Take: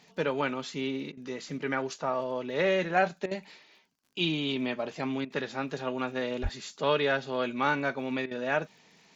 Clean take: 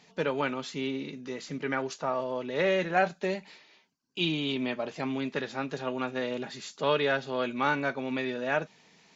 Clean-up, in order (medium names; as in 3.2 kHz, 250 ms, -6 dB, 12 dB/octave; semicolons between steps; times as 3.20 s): de-click; 6.42–6.54 s: high-pass 140 Hz 24 dB/octave; interpolate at 1.12/3.26/5.25/8.26 s, 51 ms